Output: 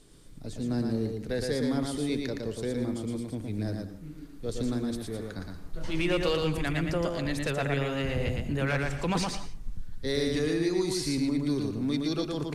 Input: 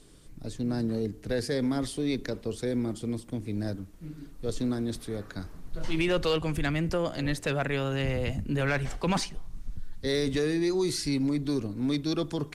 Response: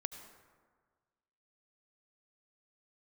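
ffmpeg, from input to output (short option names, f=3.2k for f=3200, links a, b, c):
-filter_complex "[0:a]asplit=2[a][b];[1:a]atrim=start_sample=2205,afade=t=out:st=0.23:d=0.01,atrim=end_sample=10584,adelay=115[c];[b][c]afir=irnorm=-1:irlink=0,volume=-1.5dB[d];[a][d]amix=inputs=2:normalize=0,volume=-2dB"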